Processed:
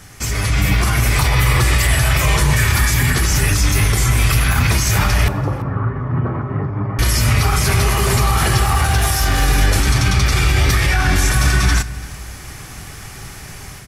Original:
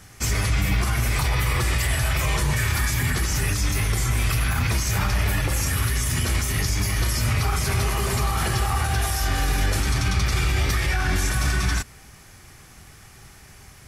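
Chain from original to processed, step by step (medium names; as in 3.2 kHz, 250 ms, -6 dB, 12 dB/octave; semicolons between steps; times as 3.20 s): in parallel at 0 dB: compression, threshold -36 dBFS, peak gain reduction 17.5 dB; 5.28–6.99 s: on the sum: elliptic band-pass 110–1200 Hz, stop band 80 dB; level rider gain up to 7 dB; on a send: delay 338 ms -21.5 dB; 8.62–9.42 s: on the sum: overload inside the chain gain 9 dB; simulated room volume 1800 m³, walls mixed, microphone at 0.32 m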